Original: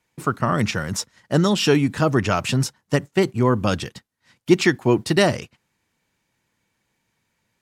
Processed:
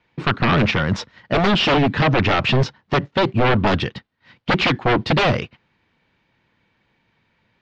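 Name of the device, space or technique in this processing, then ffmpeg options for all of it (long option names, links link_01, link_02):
synthesiser wavefolder: -filter_complex "[0:a]aeval=exprs='0.119*(abs(mod(val(0)/0.119+3,4)-2)-1)':channel_layout=same,lowpass=frequency=3900:width=0.5412,lowpass=frequency=3900:width=1.3066,asettb=1/sr,asplit=3[link_01][link_02][link_03];[link_01]atrim=end=1.884[link_04];[link_02]atrim=start=1.88:end=3.32,asetpts=PTS-STARTPTS,afade=type=in:duration=0.004:curve=qsin,afade=type=out:start_time=1.436:duration=0.004:curve=qsin,lowpass=frequency=7700:width=0.5412,lowpass=frequency=7700:width=1.3066[link_05];[link_03]atrim=start=3.316[link_06];[link_04][link_05]acrossfade=duration=0.004:curve1=hsin:curve2=qsin[link_07];[link_07][link_06]acrossfade=duration=0.004:curve1=qsin:curve2=hsin,volume=8dB"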